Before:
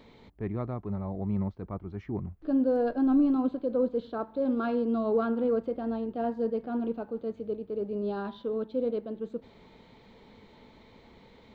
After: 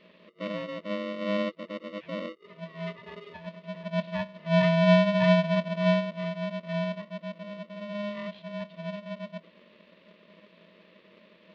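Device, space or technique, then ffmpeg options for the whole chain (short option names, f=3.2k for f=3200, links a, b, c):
ring modulator pedal into a guitar cabinet: -filter_complex "[0:a]asplit=3[a][b][c];[a]afade=t=out:st=3.91:d=0.02[d];[b]equalizer=f=370:t=o:w=1.9:g=12,afade=t=in:st=3.91:d=0.02,afade=t=out:st=5.99:d=0.02[e];[c]afade=t=in:st=5.99:d=0.02[f];[d][e][f]amix=inputs=3:normalize=0,afftfilt=real='re*(1-between(b*sr/4096,240,1300))':imag='im*(1-between(b*sr/4096,240,1300))':win_size=4096:overlap=0.75,aeval=exprs='val(0)*sgn(sin(2*PI*410*n/s))':c=same,highpass=75,equalizer=f=140:t=q:w=4:g=8,equalizer=f=280:t=q:w=4:g=-7,equalizer=f=410:t=q:w=4:g=-4,equalizer=f=1.4k:t=q:w=4:g=-10,lowpass=f=3.5k:w=0.5412,lowpass=f=3.5k:w=1.3066,volume=3dB"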